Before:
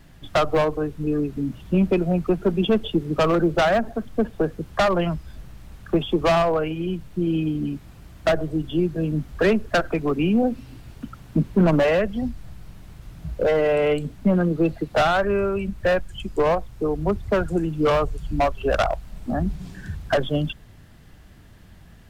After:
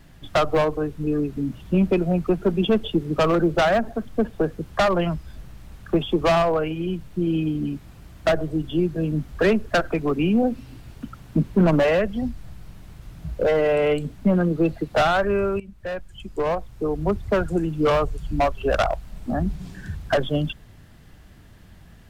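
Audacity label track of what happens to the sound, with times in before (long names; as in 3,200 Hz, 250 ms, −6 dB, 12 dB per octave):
15.600000	17.060000	fade in, from −16.5 dB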